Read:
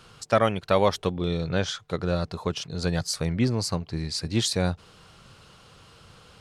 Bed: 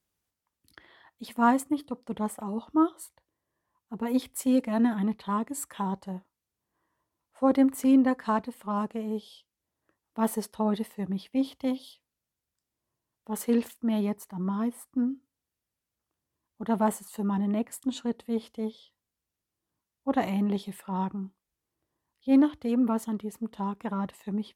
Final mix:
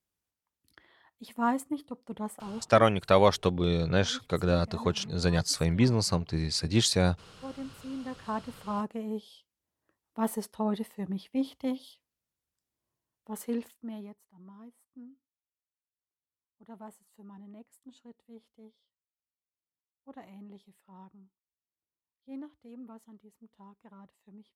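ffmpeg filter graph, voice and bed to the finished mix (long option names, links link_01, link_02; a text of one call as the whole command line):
ffmpeg -i stem1.wav -i stem2.wav -filter_complex "[0:a]adelay=2400,volume=0dB[link_01];[1:a]volume=10dB,afade=type=out:start_time=2.55:duration=0.24:silence=0.223872,afade=type=in:start_time=8:duration=0.6:silence=0.16788,afade=type=out:start_time=12.93:duration=1.26:silence=0.11885[link_02];[link_01][link_02]amix=inputs=2:normalize=0" out.wav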